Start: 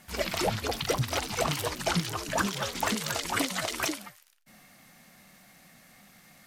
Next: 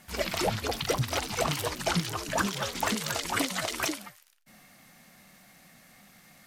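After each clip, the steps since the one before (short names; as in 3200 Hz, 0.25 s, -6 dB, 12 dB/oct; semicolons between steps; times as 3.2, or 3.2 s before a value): nothing audible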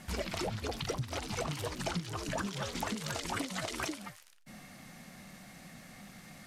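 LPF 11000 Hz 12 dB/oct; low shelf 410 Hz +6.5 dB; compressor 5:1, threshold -37 dBFS, peak gain reduction 17 dB; gain +2.5 dB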